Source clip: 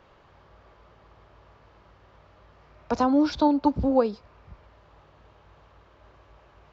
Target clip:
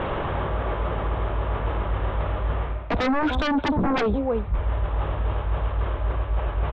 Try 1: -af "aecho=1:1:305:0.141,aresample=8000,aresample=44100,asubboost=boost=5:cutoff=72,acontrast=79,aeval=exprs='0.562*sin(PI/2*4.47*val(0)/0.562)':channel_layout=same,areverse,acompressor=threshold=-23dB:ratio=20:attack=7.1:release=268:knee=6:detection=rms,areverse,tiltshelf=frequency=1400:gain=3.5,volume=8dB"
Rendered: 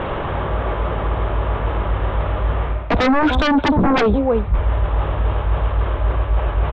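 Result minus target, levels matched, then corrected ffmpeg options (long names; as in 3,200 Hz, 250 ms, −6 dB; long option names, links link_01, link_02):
downward compressor: peak gain reduction −7 dB
-af "aecho=1:1:305:0.141,aresample=8000,aresample=44100,asubboost=boost=5:cutoff=72,acontrast=79,aeval=exprs='0.562*sin(PI/2*4.47*val(0)/0.562)':channel_layout=same,areverse,acompressor=threshold=-30.5dB:ratio=20:attack=7.1:release=268:knee=6:detection=rms,areverse,tiltshelf=frequency=1400:gain=3.5,volume=8dB"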